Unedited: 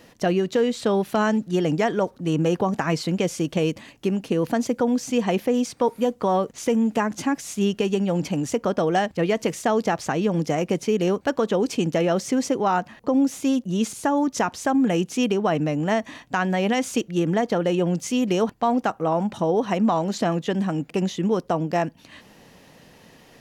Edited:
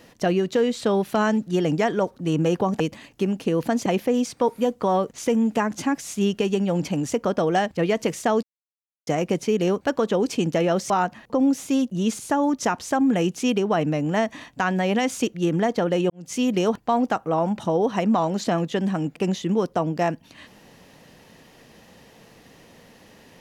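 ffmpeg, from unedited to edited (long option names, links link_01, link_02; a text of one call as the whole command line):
ffmpeg -i in.wav -filter_complex "[0:a]asplit=7[link_01][link_02][link_03][link_04][link_05][link_06][link_07];[link_01]atrim=end=2.802[link_08];[link_02]atrim=start=3.638:end=4.702[link_09];[link_03]atrim=start=5.258:end=9.83,asetpts=PTS-STARTPTS,afade=type=out:start_time=4.568:duration=0.004:curve=hsin[link_10];[link_04]atrim=start=9.83:end=10.47,asetpts=PTS-STARTPTS,volume=0[link_11];[link_05]atrim=start=10.47:end=12.302,asetpts=PTS-STARTPTS,afade=type=in:duration=0.004:curve=hsin[link_12];[link_06]atrim=start=12.638:end=17.84,asetpts=PTS-STARTPTS,afade=type=out:start_time=5.198:duration=0.004:curve=hsin[link_13];[link_07]atrim=start=17.84,asetpts=PTS-STARTPTS,afade=type=in:duration=0.25:curve=qua[link_14];[link_08][link_09]acrossfade=duration=0.004:curve1=hsin:curve2=hsin[link_15];[link_10][link_11][link_12]concat=n=3:v=0:a=1[link_16];[link_15][link_16]acrossfade=duration=0.004:curve1=hsin:curve2=hsin[link_17];[link_13][link_14]concat=n=2:v=0:a=1[link_18];[link_17][link_18]acrossfade=duration=0.004:curve1=hsin:curve2=hsin" out.wav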